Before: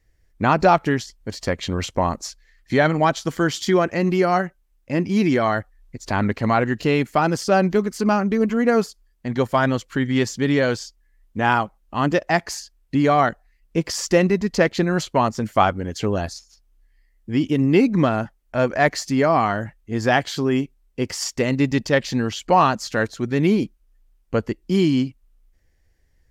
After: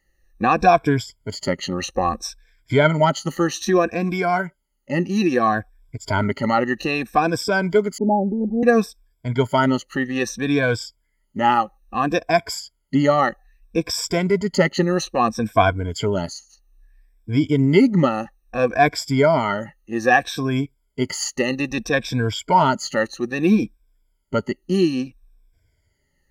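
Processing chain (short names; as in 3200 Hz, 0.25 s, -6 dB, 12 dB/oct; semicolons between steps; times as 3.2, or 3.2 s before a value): moving spectral ripple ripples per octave 1.7, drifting -0.61 Hz, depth 21 dB; 7.98–8.63 steep low-pass 870 Hz 96 dB/oct; gain -3.5 dB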